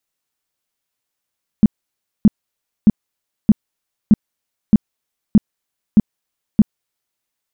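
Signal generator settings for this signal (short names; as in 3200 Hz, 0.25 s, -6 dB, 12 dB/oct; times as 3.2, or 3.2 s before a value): tone bursts 212 Hz, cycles 6, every 0.62 s, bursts 9, -4 dBFS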